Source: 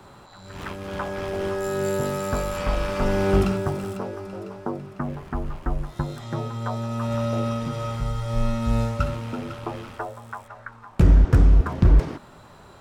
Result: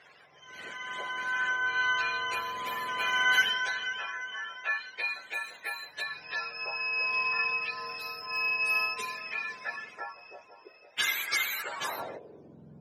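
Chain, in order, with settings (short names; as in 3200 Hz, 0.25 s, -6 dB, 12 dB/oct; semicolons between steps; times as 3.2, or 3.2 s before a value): spectrum mirrored in octaves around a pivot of 770 Hz; band-pass sweep 2000 Hz -> 200 Hz, 11.55–12.63; gain +6 dB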